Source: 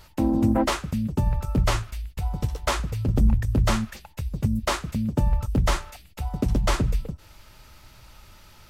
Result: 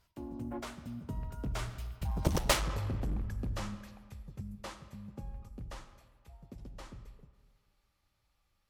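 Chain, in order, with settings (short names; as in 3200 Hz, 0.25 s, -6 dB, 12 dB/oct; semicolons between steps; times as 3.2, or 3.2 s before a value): Doppler pass-by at 2.39, 25 m/s, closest 1.8 m; in parallel at -3 dB: compressor, threshold -41 dBFS, peak gain reduction 15.5 dB; on the sum: digital reverb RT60 1.7 s, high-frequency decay 0.7×, pre-delay 15 ms, DRR 11.5 dB; added harmonics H 7 -8 dB, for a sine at -15.5 dBFS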